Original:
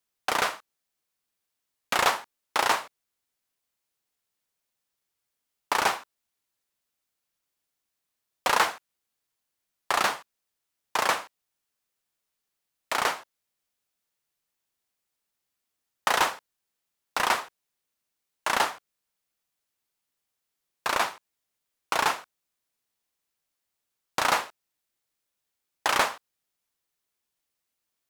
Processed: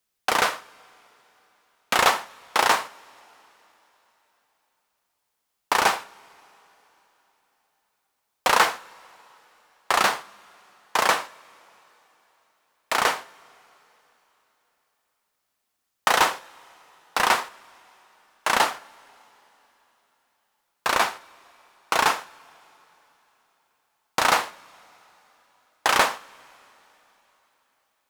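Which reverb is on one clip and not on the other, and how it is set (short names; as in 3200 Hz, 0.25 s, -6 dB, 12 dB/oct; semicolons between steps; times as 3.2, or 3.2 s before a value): two-slope reverb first 0.38 s, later 3.9 s, from -21 dB, DRR 12.5 dB; gain +4 dB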